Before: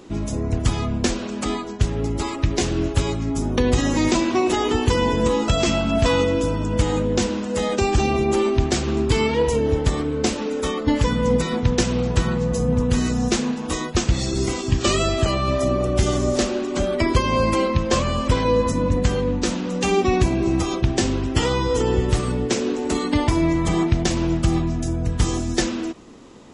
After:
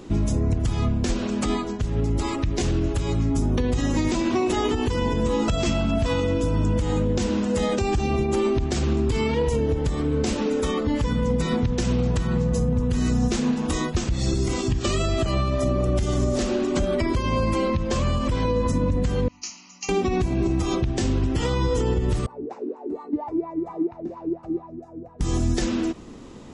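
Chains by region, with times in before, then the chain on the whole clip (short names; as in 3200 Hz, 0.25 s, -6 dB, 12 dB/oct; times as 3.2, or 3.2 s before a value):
19.28–19.89 brick-wall FIR low-pass 7200 Hz + differentiator + fixed phaser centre 2400 Hz, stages 8
22.26–25.21 notch 3200 Hz, Q 6.1 + wah 4.3 Hz 300–1000 Hz, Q 8.5
whole clip: low shelf 200 Hz +8 dB; compressor 4:1, threshold -17 dBFS; limiter -14 dBFS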